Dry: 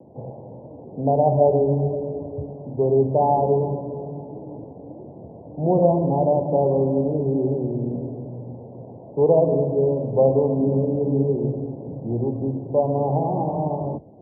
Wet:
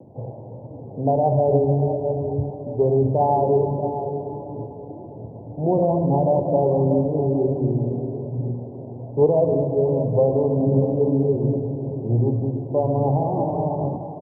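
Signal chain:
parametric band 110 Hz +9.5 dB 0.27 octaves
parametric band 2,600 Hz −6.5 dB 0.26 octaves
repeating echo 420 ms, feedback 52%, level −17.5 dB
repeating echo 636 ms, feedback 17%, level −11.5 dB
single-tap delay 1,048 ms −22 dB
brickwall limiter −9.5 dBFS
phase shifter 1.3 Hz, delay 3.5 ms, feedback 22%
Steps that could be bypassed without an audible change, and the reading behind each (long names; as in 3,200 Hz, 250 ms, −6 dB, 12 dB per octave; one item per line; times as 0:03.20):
parametric band 2,600 Hz: nothing at its input above 960 Hz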